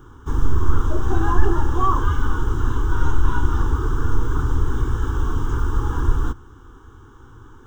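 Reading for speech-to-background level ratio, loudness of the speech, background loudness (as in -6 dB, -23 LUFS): -2.5 dB, -26.5 LUFS, -24.0 LUFS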